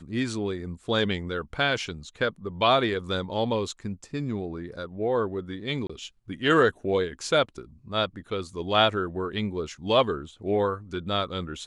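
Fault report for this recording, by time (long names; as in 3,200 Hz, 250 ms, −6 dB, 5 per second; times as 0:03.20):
0:05.87–0:05.89: drop-out 25 ms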